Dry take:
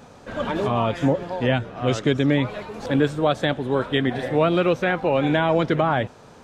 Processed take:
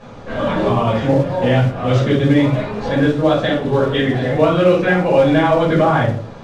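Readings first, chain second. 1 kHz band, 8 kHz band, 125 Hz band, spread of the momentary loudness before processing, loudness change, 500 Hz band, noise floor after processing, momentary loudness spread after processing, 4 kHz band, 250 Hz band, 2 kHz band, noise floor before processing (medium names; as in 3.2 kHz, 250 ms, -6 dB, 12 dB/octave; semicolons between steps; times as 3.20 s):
+5.5 dB, no reading, +8.5 dB, 6 LU, +6.5 dB, +6.5 dB, -34 dBFS, 5 LU, +3.5 dB, +6.5 dB, +5.0 dB, -47 dBFS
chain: in parallel at +3 dB: compression, threshold -27 dBFS, peak gain reduction 13 dB; on the sum: flange 1.5 Hz, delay 8.5 ms, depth 4.3 ms, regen +89%; simulated room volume 410 m³, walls furnished, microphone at 5.6 m; modulation noise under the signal 25 dB; low-pass 4.7 kHz 12 dB/octave; trim -3 dB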